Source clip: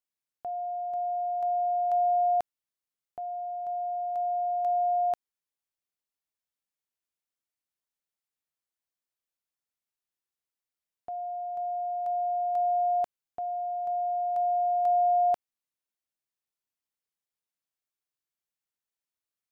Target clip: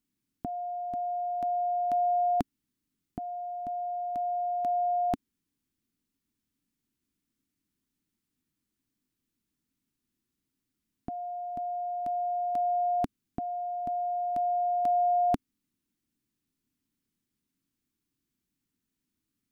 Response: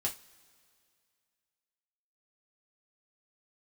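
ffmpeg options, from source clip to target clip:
-af "lowshelf=f=400:t=q:w=3:g=14,volume=5dB"

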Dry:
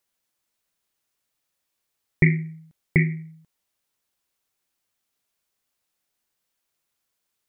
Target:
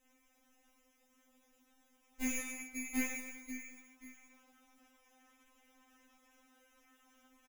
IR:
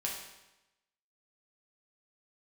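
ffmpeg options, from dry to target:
-filter_complex "[0:a]highshelf=f=2.2k:g=4.5,aecho=1:1:538|1076:0.0891|0.016[a];[1:a]atrim=start_sample=2205,afade=t=out:st=0.45:d=0.01,atrim=end_sample=20286[b];[a][b]afir=irnorm=-1:irlink=0,acrusher=samples=10:mix=1:aa=0.000001,asoftclip=type=tanh:threshold=-21dB,acompressor=threshold=-55dB:ratio=1.5,acrusher=bits=6:mode=log:mix=0:aa=0.000001,asetnsamples=n=441:p=0,asendcmd='2.39 equalizer g -5',equalizer=f=1.3k:w=0.34:g=-11,afftfilt=real='re*3.46*eq(mod(b,12),0)':imag='im*3.46*eq(mod(b,12),0)':win_size=2048:overlap=0.75,volume=10dB"

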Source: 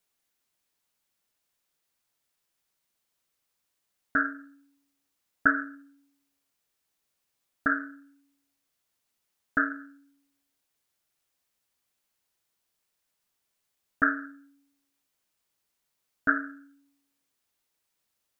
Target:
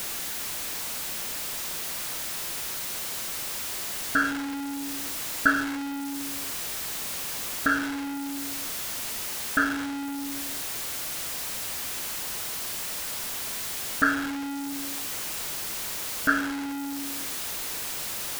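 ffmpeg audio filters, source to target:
-af "aeval=exprs='val(0)+0.5*0.0473*sgn(val(0))':c=same"

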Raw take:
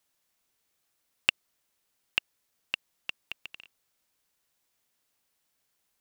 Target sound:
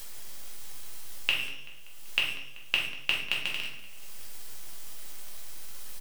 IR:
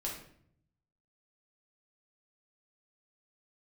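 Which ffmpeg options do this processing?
-filter_complex "[0:a]highshelf=f=2.3k:g=8,bandreject=f=135.2:t=h:w=4,bandreject=f=270.4:t=h:w=4,bandreject=f=405.6:t=h:w=4,bandreject=f=540.8:t=h:w=4,bandreject=f=676:t=h:w=4,bandreject=f=811.2:t=h:w=4,bandreject=f=946.4:t=h:w=4,bandreject=f=1.0816k:t=h:w=4,bandreject=f=1.2168k:t=h:w=4,bandreject=f=1.352k:t=h:w=4,bandreject=f=1.4872k:t=h:w=4,bandreject=f=1.6224k:t=h:w=4,bandreject=f=1.7576k:t=h:w=4,bandreject=f=1.8928k:t=h:w=4,bandreject=f=2.028k:t=h:w=4,bandreject=f=2.1632k:t=h:w=4,bandreject=f=2.2984k:t=h:w=4,bandreject=f=2.4336k:t=h:w=4,bandreject=f=2.5688k:t=h:w=4,bandreject=f=2.704k:t=h:w=4,bandreject=f=2.8392k:t=h:w=4,bandreject=f=2.9744k:t=h:w=4,bandreject=f=3.1096k:t=h:w=4,bandreject=f=3.2448k:t=h:w=4,bandreject=f=3.38k:t=h:w=4,bandreject=f=3.5152k:t=h:w=4,bandreject=f=3.6504k:t=h:w=4,bandreject=f=3.7856k:t=h:w=4,asplit=2[a][b];[b]acompressor=mode=upward:threshold=-29dB:ratio=2.5,volume=3dB[c];[a][c]amix=inputs=2:normalize=0,alimiter=limit=-4dB:level=0:latency=1:release=296,acrossover=split=3800[d][e];[e]asoftclip=type=tanh:threshold=-21dB[f];[d][f]amix=inputs=2:normalize=0,aeval=exprs='val(0)+0.00158*sin(2*PI*3200*n/s)':c=same,acrusher=bits=7:dc=4:mix=0:aa=0.000001,asplit=2[g][h];[h]adelay=192,lowpass=f=4.6k:p=1,volume=-15dB,asplit=2[i][j];[j]adelay=192,lowpass=f=4.6k:p=1,volume=0.53,asplit=2[k][l];[l]adelay=192,lowpass=f=4.6k:p=1,volume=0.53,asplit=2[m][n];[n]adelay=192,lowpass=f=4.6k:p=1,volume=0.53,asplit=2[o][p];[p]adelay=192,lowpass=f=4.6k:p=1,volume=0.53[q];[g][i][k][m][o][q]amix=inputs=6:normalize=0[r];[1:a]atrim=start_sample=2205,afade=t=out:st=0.26:d=0.01,atrim=end_sample=11907[s];[r][s]afir=irnorm=-1:irlink=0"

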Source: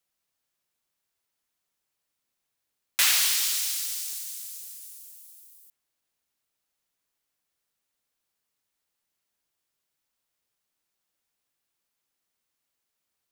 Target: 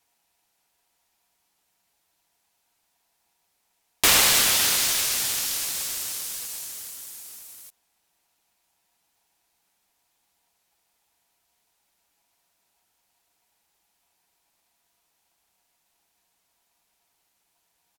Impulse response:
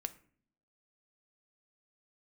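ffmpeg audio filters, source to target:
-filter_complex "[0:a]aecho=1:1:5.9:0.56,asetrate=32667,aresample=44100,asplit=2[a][b];[b]acompressor=threshold=-35dB:ratio=6,volume=1.5dB[c];[a][c]amix=inputs=2:normalize=0,lowshelf=f=190:t=q:w=1.5:g=9,aeval=exprs='val(0)*sgn(sin(2*PI*830*n/s))':c=same,volume=1dB"

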